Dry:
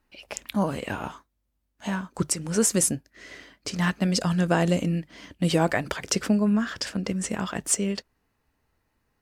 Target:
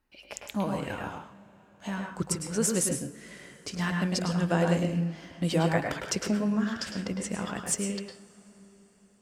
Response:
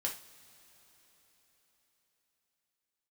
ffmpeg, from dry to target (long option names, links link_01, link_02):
-filter_complex "[0:a]asplit=2[link_01][link_02];[1:a]atrim=start_sample=2205,highshelf=frequency=4700:gain=-8.5,adelay=105[link_03];[link_02][link_03]afir=irnorm=-1:irlink=0,volume=-3.5dB[link_04];[link_01][link_04]amix=inputs=2:normalize=0,volume=-5.5dB"